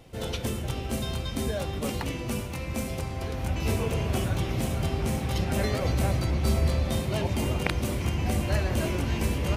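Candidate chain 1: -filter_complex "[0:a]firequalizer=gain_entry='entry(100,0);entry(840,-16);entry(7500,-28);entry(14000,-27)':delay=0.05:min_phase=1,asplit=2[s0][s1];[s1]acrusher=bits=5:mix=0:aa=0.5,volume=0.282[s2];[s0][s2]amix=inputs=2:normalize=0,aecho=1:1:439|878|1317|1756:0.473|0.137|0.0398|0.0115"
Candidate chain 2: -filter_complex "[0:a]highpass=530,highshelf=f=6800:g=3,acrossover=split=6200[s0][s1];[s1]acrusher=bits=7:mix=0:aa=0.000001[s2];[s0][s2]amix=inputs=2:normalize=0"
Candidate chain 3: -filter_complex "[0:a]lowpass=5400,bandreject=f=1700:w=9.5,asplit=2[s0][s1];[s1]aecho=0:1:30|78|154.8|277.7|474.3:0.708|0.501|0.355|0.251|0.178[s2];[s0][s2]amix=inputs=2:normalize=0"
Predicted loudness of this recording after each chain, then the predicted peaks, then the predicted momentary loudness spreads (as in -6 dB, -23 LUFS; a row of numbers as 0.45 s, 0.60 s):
-27.5 LUFS, -34.5 LUFS, -26.0 LUFS; -12.5 dBFS, -6.5 dBFS, -8.5 dBFS; 8 LU, 5 LU, 7 LU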